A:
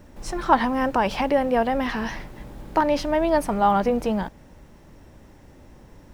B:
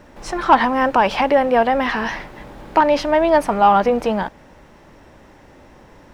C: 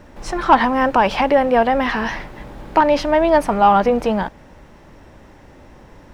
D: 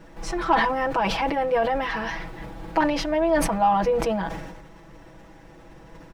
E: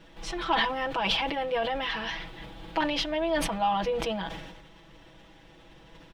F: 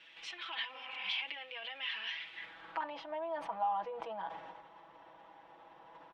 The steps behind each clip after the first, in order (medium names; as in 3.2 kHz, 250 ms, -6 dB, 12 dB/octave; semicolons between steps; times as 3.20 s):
overdrive pedal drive 11 dB, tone 2.6 kHz, clips at -4 dBFS; trim +3.5 dB
bass shelf 160 Hz +5.5 dB
compression 1.5:1, threshold -26 dBFS, peak gain reduction 7 dB; comb 6.1 ms, depth 97%; decay stretcher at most 43 dB/s; trim -6 dB
peaking EQ 3.3 kHz +14 dB 0.86 oct; trim -7 dB
spectral replace 0.76–1.15 s, 220–3000 Hz both; compression 2.5:1, threshold -40 dBFS, peak gain reduction 12.5 dB; band-pass sweep 2.6 kHz -> 910 Hz, 2.28–2.94 s; trim +5.5 dB